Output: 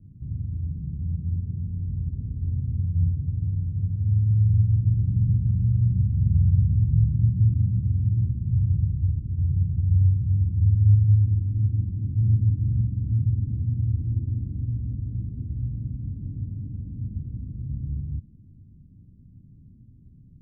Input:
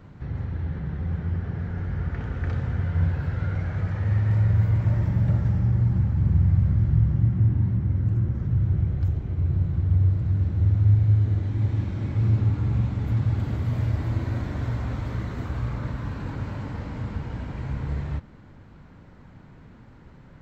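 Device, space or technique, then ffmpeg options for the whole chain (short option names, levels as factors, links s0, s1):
the neighbour's flat through the wall: -af "lowpass=f=260:w=0.5412,lowpass=f=260:w=1.3066,equalizer=f=100:t=o:w=0.87:g=5,volume=0.668"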